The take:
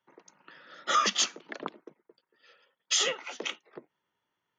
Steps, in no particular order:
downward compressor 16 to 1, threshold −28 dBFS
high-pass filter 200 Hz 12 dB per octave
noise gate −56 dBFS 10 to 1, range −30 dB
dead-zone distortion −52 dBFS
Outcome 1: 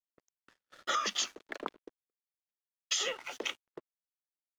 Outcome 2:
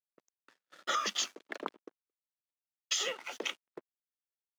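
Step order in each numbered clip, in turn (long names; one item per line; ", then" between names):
high-pass filter, then dead-zone distortion, then noise gate, then downward compressor
downward compressor, then dead-zone distortion, then noise gate, then high-pass filter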